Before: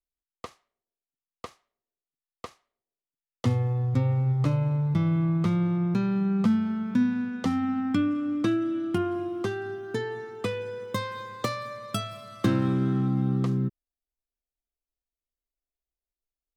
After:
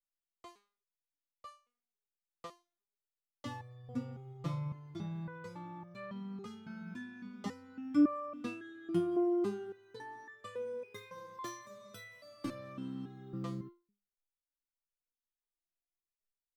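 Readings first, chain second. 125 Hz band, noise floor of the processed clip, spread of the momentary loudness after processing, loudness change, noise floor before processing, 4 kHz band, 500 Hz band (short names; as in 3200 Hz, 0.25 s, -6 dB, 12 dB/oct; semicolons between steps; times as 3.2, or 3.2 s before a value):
-19.5 dB, under -85 dBFS, 21 LU, -12.5 dB, under -85 dBFS, -14.0 dB, -8.0 dB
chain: stepped resonator 3.6 Hz 170–590 Hz; gain +3.5 dB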